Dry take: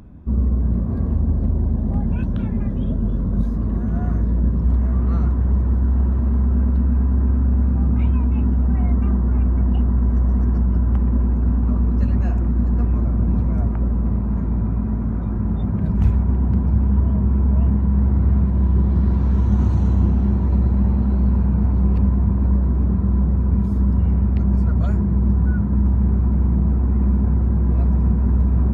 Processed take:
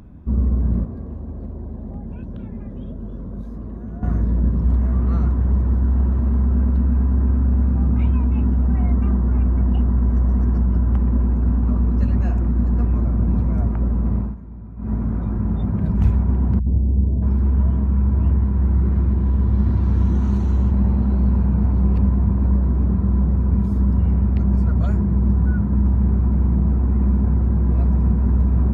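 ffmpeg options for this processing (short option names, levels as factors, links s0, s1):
-filter_complex "[0:a]asettb=1/sr,asplit=3[s0][s1][s2];[s0]atrim=end=0.844[s3];[s1]atrim=start=0.84:end=4.03,asetpts=PTS-STARTPTS,afade=t=in:d=0.004:c=qsin,afade=t=out:st=3.186:d=0.004:c=qsin,acrossover=split=320|640[s4][s5][s6];[s4]acompressor=threshold=0.0282:ratio=4[s7];[s5]acompressor=threshold=0.01:ratio=4[s8];[s6]acompressor=threshold=0.00158:ratio=4[s9];[s7][s8][s9]amix=inputs=3:normalize=0[s10];[s2]atrim=start=4.026[s11];[s3][s10]acrossfade=d=0.004:c1=hsin:c2=qsin[s12];[s12][s11]acrossfade=d=0.004:c1=qsin:c2=hsin,asettb=1/sr,asplit=3[s13][s14][s15];[s13]atrim=end=16.594[s16];[s14]atrim=start=16.59:end=20.71,asetpts=PTS-STARTPTS,afade=t=in:d=0.004:c=qsin,afade=t=out:st=4.116:d=0.004:c=qsin,acrossover=split=160|650[s17][s18][s19];[s18]adelay=70[s20];[s19]adelay=630[s21];[s17][s20][s21]amix=inputs=3:normalize=0,atrim=end_sample=181692[s22];[s15]atrim=start=20.706[s23];[s16][s22]acrossfade=d=0.004:c1=hsin:c2=qsin[s24];[s24][s23]acrossfade=d=0.004:c1=qsin:c2=hsin,asplit=3[s25][s26][s27];[s25]atrim=end=14.36,asetpts=PTS-STARTPTS,afade=t=out:st=14.21:d=0.15:silence=0.16788[s28];[s26]atrim=start=14.36:end=14.77,asetpts=PTS-STARTPTS,volume=0.168[s29];[s27]atrim=start=14.77,asetpts=PTS-STARTPTS,afade=t=in:d=0.15:silence=0.16788[s30];[s28][s29][s30]concat=n=3:v=0:a=1"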